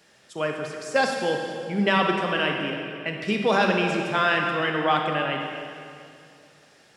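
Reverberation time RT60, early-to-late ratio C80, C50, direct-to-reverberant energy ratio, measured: 2.4 s, 4.0 dB, 2.5 dB, 2.0 dB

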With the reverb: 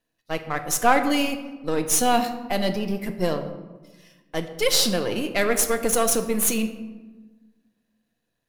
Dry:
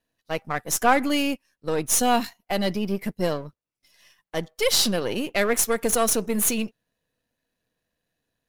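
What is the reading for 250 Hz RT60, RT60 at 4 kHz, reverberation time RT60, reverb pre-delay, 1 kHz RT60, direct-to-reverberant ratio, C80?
1.8 s, 0.70 s, 1.3 s, 3 ms, 1.2 s, 7.0 dB, 11.5 dB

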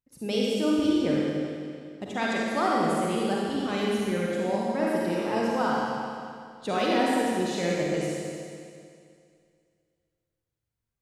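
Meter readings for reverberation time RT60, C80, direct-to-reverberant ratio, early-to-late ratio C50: 2.3 s, -2.0 dB, -5.5 dB, -4.5 dB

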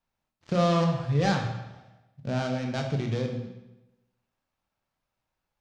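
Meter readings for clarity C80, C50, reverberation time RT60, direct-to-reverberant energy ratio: 8.0 dB, 5.5 dB, 1.0 s, 2.5 dB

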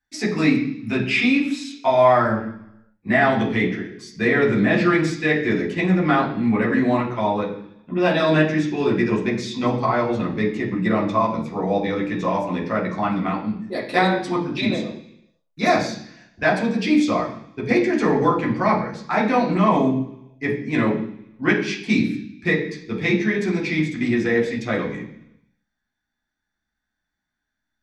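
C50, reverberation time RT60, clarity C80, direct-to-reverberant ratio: 7.5 dB, 0.70 s, 10.5 dB, -4.0 dB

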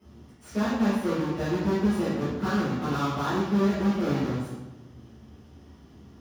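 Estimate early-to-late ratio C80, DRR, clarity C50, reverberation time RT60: 3.0 dB, -11.5 dB, -0.5 dB, 1.1 s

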